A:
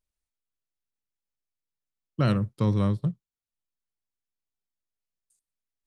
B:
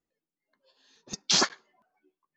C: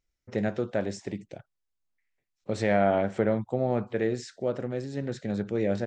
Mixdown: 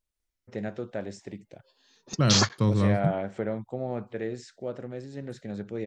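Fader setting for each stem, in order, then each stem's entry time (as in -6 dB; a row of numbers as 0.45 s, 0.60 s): +0.5 dB, 0.0 dB, -5.5 dB; 0.00 s, 1.00 s, 0.20 s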